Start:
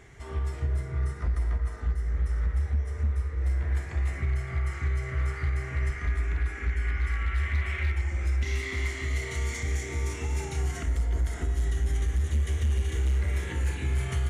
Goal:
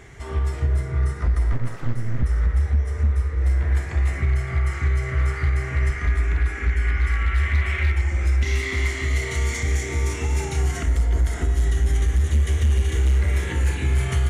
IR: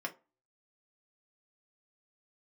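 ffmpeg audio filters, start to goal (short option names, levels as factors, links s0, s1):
-filter_complex "[0:a]asettb=1/sr,asplit=3[s0][s1][s2];[s0]atrim=end=1.524[s3];[s1]atrim=start=1.52:end=2.23,asetpts=PTS-STARTPTS,afade=t=in:d=0.004:c=qsin,afade=t=out:st=0.706:d=0.004:c=qsin,aeval=exprs='abs(val(0))':c=same[s4];[s2]atrim=start=2.226[s5];[s3][s4]acrossfade=d=0.004:c1=hsin:c2=qsin[s6];[s6][s5]acrossfade=d=0.004:c1=qsin:c2=hsin,volume=2.24"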